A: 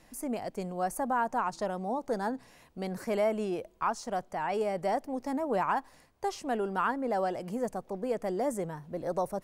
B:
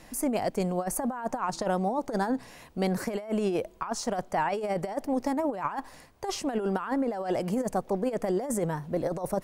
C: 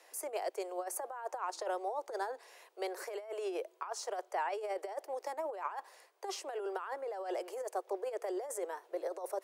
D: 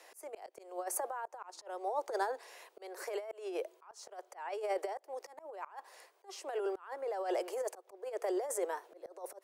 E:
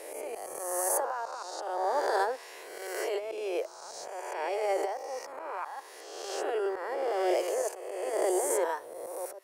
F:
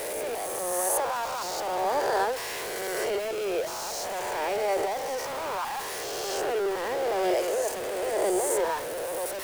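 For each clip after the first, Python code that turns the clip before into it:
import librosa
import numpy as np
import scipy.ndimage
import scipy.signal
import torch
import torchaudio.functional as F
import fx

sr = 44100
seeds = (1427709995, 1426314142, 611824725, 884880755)

y1 = fx.over_compress(x, sr, threshold_db=-33.0, ratio=-0.5)
y1 = F.gain(torch.from_numpy(y1), 5.5).numpy()
y2 = scipy.signal.sosfilt(scipy.signal.butter(12, 360.0, 'highpass', fs=sr, output='sos'), y1)
y2 = F.gain(torch.from_numpy(y2), -7.5).numpy()
y3 = fx.auto_swell(y2, sr, attack_ms=361.0)
y3 = F.gain(torch.from_numpy(y3), 3.5).numpy()
y4 = fx.spec_swells(y3, sr, rise_s=1.43)
y4 = F.gain(torch.from_numpy(y4), 3.5).numpy()
y5 = y4 + 0.5 * 10.0 ** (-30.0 / 20.0) * np.sign(y4)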